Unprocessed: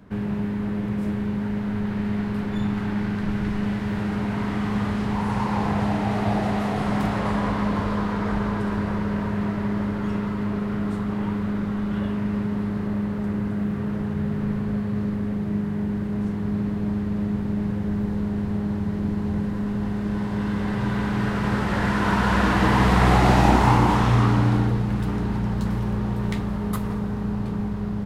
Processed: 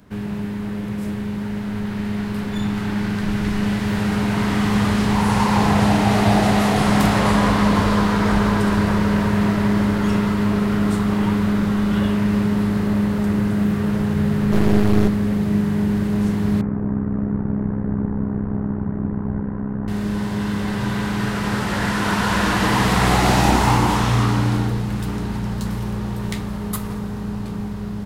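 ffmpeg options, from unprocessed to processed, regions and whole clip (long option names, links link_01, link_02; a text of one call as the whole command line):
ffmpeg -i in.wav -filter_complex "[0:a]asettb=1/sr,asplit=3[link_01][link_02][link_03];[link_01]atrim=end=14.524[link_04];[link_02]atrim=start=14.52:end=15.08,asetpts=PTS-STARTPTS,afade=type=in:duration=0.004:curve=qsin,afade=type=out:start_time=0.556:duration=0.004:curve=qsin,acontrast=90,aeval=exprs='max(val(0),0)':channel_layout=same[link_05];[link_03]atrim=start=15.076[link_06];[link_04][link_05]acrossfade=duration=0.004:curve1=hsin:curve2=qsin[link_07];[link_07][link_06]acrossfade=duration=0.004:curve1=qsin:curve2=hsin,asettb=1/sr,asplit=3[link_08][link_09][link_10];[link_08]atrim=end=16.614[link_11];[link_09]atrim=start=16.61:end=19.88,asetpts=PTS-STARTPTS,afade=type=in:duration=0.004:curve=qsin,afade=type=out:start_time=3.266:duration=0.004:curve=qsin,lowpass=frequency=1500:width=0.5412,lowpass=frequency=1500:width=1.3066,tremolo=f=64:d=0.75[link_12];[link_10]atrim=start=19.876[link_13];[link_11][link_12]acrossfade=duration=0.004:curve1=hsin:curve2=qsin[link_14];[link_14][link_13]acrossfade=duration=0.004:curve1=qsin:curve2=hsin,highshelf=frequency=3600:gain=11.5,dynaudnorm=framelen=420:gausssize=17:maxgain=8dB,bandreject=frequency=64.28:width_type=h:width=4,bandreject=frequency=128.56:width_type=h:width=4,bandreject=frequency=192.84:width_type=h:width=4,bandreject=frequency=257.12:width_type=h:width=4,bandreject=frequency=321.4:width_type=h:width=4,bandreject=frequency=385.68:width_type=h:width=4,bandreject=frequency=449.96:width_type=h:width=4,bandreject=frequency=514.24:width_type=h:width=4,bandreject=frequency=578.52:width_type=h:width=4,bandreject=frequency=642.8:width_type=h:width=4,bandreject=frequency=707.08:width_type=h:width=4,bandreject=frequency=771.36:width_type=h:width=4,bandreject=frequency=835.64:width_type=h:width=4,bandreject=frequency=899.92:width_type=h:width=4,bandreject=frequency=964.2:width_type=h:width=4,bandreject=frequency=1028.48:width_type=h:width=4,bandreject=frequency=1092.76:width_type=h:width=4,bandreject=frequency=1157.04:width_type=h:width=4,bandreject=frequency=1221.32:width_type=h:width=4,bandreject=frequency=1285.6:width_type=h:width=4,bandreject=frequency=1349.88:width_type=h:width=4,bandreject=frequency=1414.16:width_type=h:width=4,bandreject=frequency=1478.44:width_type=h:width=4,bandreject=frequency=1542.72:width_type=h:width=4,bandreject=frequency=1607:width_type=h:width=4,bandreject=frequency=1671.28:width_type=h:width=4,bandreject=frequency=1735.56:width_type=h:width=4,bandreject=frequency=1799.84:width_type=h:width=4,bandreject=frequency=1864.12:width_type=h:width=4,bandreject=frequency=1928.4:width_type=h:width=4,bandreject=frequency=1992.68:width_type=h:width=4,bandreject=frequency=2056.96:width_type=h:width=4,bandreject=frequency=2121.24:width_type=h:width=4,bandreject=frequency=2185.52:width_type=h:width=4,bandreject=frequency=2249.8:width_type=h:width=4,bandreject=frequency=2314.08:width_type=h:width=4,bandreject=frequency=2378.36:width_type=h:width=4" out.wav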